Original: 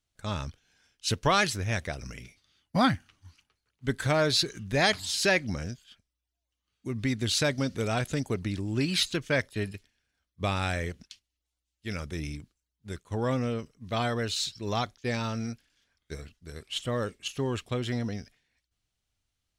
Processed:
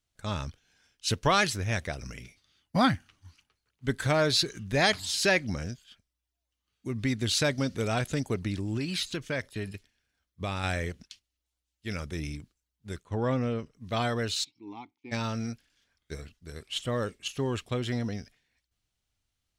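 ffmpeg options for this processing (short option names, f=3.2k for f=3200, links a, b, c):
-filter_complex "[0:a]asettb=1/sr,asplit=3[a][b][c];[a]atrim=end=8.774[d];[b]atrim=start=8.77:end=10.64,asetpts=PTS-STARTPTS,afade=t=in:d=0.004:c=qsin,afade=t=out:st=1.866:d=0.004:c=qsin,acompressor=threshold=-31dB:ratio=2:attack=3.2:release=140:knee=1:detection=peak[e];[c]atrim=start=10.636[f];[d][e]acrossfade=d=0.004:c1=hsin:c2=qsin[g];[g][f]acrossfade=d=0.004:c1=qsin:c2=hsin,asettb=1/sr,asplit=3[h][i][j];[h]atrim=end=13.054[k];[i]atrim=start=13.05:end=13.74,asetpts=PTS-STARTPTS,afade=t=in:d=0.004:c=qsin,afade=t=out:st=0.686:d=0.004:c=qsin,aemphasis=mode=reproduction:type=50fm[l];[j]atrim=start=13.736[m];[k][l]acrossfade=d=0.004:c1=hsin:c2=qsin[n];[n][m]acrossfade=d=0.004:c1=qsin:c2=hsin,asplit=3[o][p][q];[o]afade=t=out:st=14.43:d=0.02[r];[p]asplit=3[s][t][u];[s]bandpass=f=300:t=q:w=8,volume=0dB[v];[t]bandpass=f=870:t=q:w=8,volume=-6dB[w];[u]bandpass=f=2.24k:t=q:w=8,volume=-9dB[x];[v][w][x]amix=inputs=3:normalize=0,afade=t=in:st=14.43:d=0.02,afade=t=out:st=15.11:d=0.02[y];[q]afade=t=in:st=15.11:d=0.02[z];[r][y][z]amix=inputs=3:normalize=0"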